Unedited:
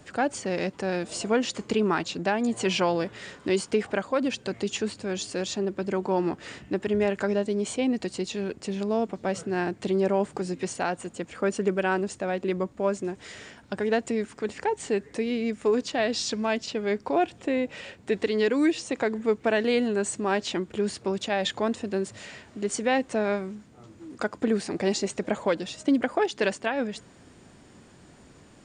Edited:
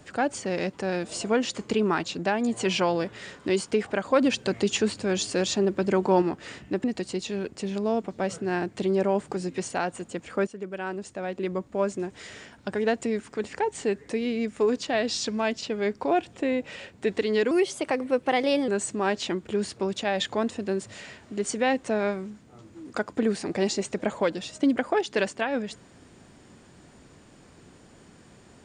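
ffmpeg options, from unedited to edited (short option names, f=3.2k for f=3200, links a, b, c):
-filter_complex "[0:a]asplit=7[a][b][c][d][e][f][g];[a]atrim=end=4.052[h];[b]atrim=start=4.048:end=6.222,asetpts=PTS-STARTPTS,volume=4.5dB[i];[c]atrim=start=6.218:end=6.842[j];[d]atrim=start=7.888:end=11.52,asetpts=PTS-STARTPTS,afade=t=out:st=3.628:d=0.004:c=hsin:silence=0.199526[k];[e]atrim=start=11.52:end=18.564,asetpts=PTS-STARTPTS,afade=t=in:d=1.37:silence=0.199526[l];[f]atrim=start=18.56:end=19.93,asetpts=PTS-STARTPTS,asetrate=51597,aresample=44100,atrim=end_sample=51638,asetpts=PTS-STARTPTS[m];[g]atrim=start=19.926[n];[h][i]acrossfade=d=0.004:c1=hsin:c2=hsin[o];[o][j]acrossfade=d=0.004:c1=hsin:c2=hsin[p];[k][l]concat=n=2:v=0:a=1[q];[p][q]acrossfade=d=0.004:c1=hsin:c2=hsin[r];[r][m]acrossfade=d=0.004:c1=hsin:c2=hsin[s];[s][n]acrossfade=d=0.004:c1=hsin:c2=hsin"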